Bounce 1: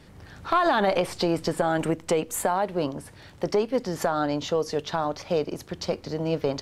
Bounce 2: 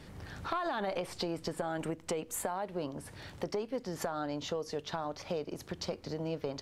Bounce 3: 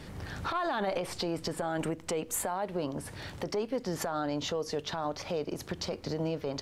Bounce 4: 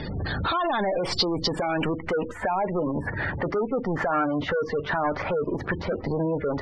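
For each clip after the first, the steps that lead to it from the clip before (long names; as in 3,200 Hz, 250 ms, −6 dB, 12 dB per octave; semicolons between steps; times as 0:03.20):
downward compressor 2.5 to 1, threshold −38 dBFS, peak gain reduction 13.5 dB
brickwall limiter −28.5 dBFS, peak gain reduction 10 dB; level +5.5 dB
leveller curve on the samples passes 3; gate on every frequency bin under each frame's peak −20 dB strong; low-pass filter sweep 4,600 Hz → 1,700 Hz, 0:01.40–0:02.18; level +2 dB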